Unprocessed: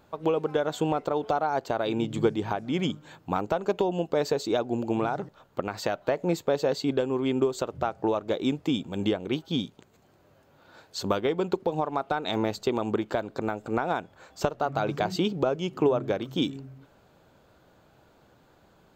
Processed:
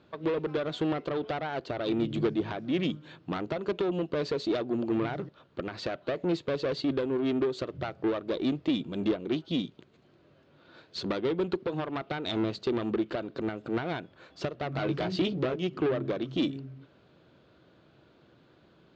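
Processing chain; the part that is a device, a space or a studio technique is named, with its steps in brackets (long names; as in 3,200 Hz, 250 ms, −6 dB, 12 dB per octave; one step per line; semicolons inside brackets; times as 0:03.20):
0:14.73–0:15.67: double-tracking delay 16 ms −6 dB
guitar amplifier (tube saturation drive 25 dB, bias 0.5; bass and treble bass +6 dB, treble +15 dB; loudspeaker in its box 100–3,600 Hz, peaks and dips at 100 Hz −5 dB, 190 Hz −3 dB, 340 Hz +5 dB, 830 Hz −7 dB)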